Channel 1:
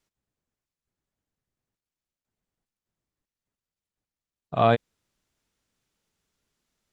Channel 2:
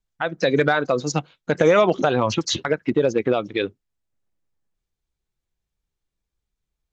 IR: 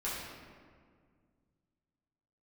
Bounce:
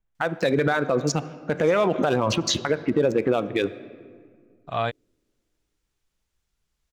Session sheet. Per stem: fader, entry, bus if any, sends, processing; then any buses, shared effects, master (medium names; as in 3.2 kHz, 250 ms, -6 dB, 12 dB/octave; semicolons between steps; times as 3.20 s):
-1.5 dB, 0.15 s, no send, peaking EQ 270 Hz -10 dB 2.6 oct
+2.0 dB, 0.00 s, send -19.5 dB, local Wiener filter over 9 samples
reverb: on, RT60 1.9 s, pre-delay 5 ms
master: peak limiter -12 dBFS, peak gain reduction 9.5 dB